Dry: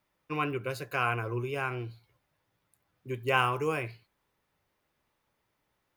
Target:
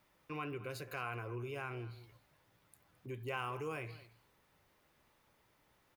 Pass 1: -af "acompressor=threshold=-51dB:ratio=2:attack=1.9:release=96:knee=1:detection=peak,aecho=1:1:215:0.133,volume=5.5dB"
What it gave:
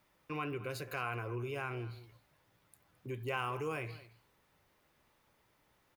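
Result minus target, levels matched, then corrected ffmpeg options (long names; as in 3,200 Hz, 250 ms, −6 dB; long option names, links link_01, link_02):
downward compressor: peak gain reduction −3 dB
-af "acompressor=threshold=-57.5dB:ratio=2:attack=1.9:release=96:knee=1:detection=peak,aecho=1:1:215:0.133,volume=5.5dB"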